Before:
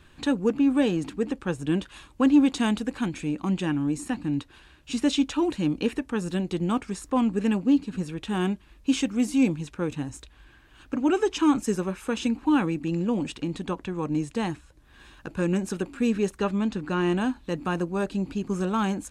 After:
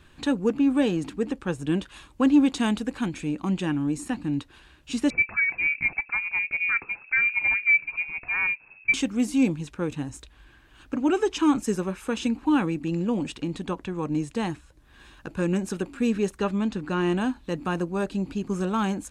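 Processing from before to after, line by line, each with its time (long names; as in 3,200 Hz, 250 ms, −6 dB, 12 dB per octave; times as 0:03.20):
0:05.10–0:08.94: voice inversion scrambler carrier 2,600 Hz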